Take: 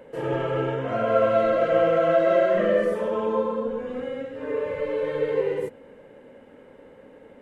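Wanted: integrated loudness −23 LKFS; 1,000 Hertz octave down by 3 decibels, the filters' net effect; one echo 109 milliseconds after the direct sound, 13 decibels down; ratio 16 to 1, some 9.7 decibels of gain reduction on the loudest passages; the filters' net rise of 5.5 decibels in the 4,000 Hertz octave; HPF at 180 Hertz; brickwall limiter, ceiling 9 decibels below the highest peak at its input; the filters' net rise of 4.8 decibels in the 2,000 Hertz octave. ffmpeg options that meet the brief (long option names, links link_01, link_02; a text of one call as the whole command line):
ffmpeg -i in.wav -af "highpass=180,equalizer=frequency=1000:width_type=o:gain=-8.5,equalizer=frequency=2000:width_type=o:gain=8,equalizer=frequency=4000:width_type=o:gain=4.5,acompressor=threshold=-27dB:ratio=16,alimiter=level_in=4dB:limit=-24dB:level=0:latency=1,volume=-4dB,aecho=1:1:109:0.224,volume=13dB" out.wav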